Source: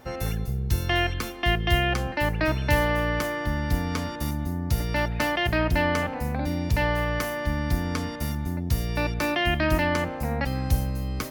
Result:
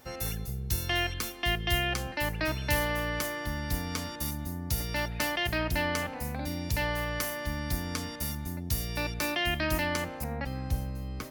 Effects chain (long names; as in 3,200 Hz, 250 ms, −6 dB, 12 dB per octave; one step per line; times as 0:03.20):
high-shelf EQ 3,300 Hz +12 dB, from 0:10.24 −2 dB
level −7.5 dB